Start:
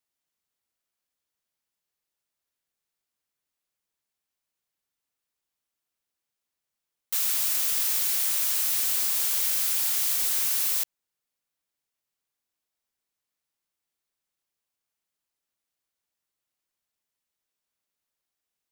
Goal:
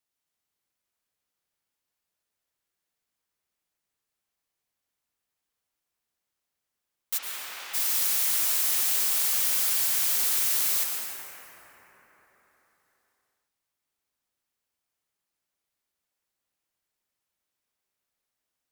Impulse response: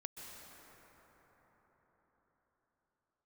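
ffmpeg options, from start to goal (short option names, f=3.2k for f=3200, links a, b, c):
-filter_complex "[0:a]asplit=3[a][b][c];[a]afade=t=out:st=7.17:d=0.02[d];[b]highpass=510,lowpass=2.7k,afade=t=in:st=7.17:d=0.02,afade=t=out:st=7.73:d=0.02[e];[c]afade=t=in:st=7.73:d=0.02[f];[d][e][f]amix=inputs=3:normalize=0[g];[1:a]atrim=start_sample=2205,asetrate=52920,aresample=44100[h];[g][h]afir=irnorm=-1:irlink=0,volume=6.5dB"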